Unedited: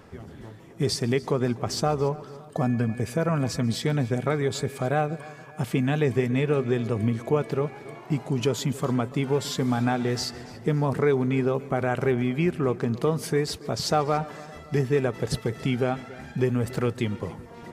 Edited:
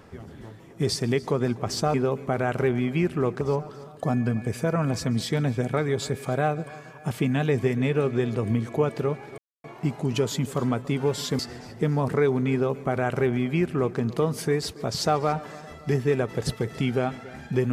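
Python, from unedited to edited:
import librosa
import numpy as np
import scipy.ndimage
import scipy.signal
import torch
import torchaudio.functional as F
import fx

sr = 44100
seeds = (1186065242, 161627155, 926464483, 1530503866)

y = fx.edit(x, sr, fx.insert_silence(at_s=7.91, length_s=0.26),
    fx.cut(start_s=9.66, length_s=0.58),
    fx.duplicate(start_s=11.37, length_s=1.47, to_s=1.94), tone=tone)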